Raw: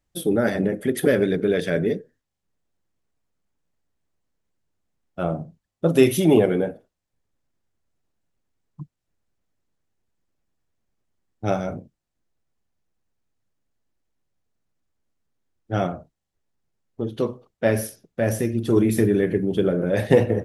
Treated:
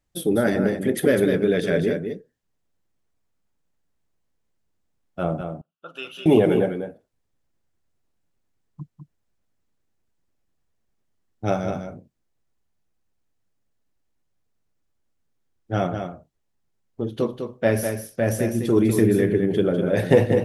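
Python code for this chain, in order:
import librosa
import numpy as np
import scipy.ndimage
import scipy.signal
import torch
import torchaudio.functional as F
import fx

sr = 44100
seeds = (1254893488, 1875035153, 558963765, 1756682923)

y = fx.double_bandpass(x, sr, hz=2000.0, octaves=1.0, at=(5.41, 6.26))
y = y + 10.0 ** (-7.0 / 20.0) * np.pad(y, (int(201 * sr / 1000.0), 0))[:len(y)]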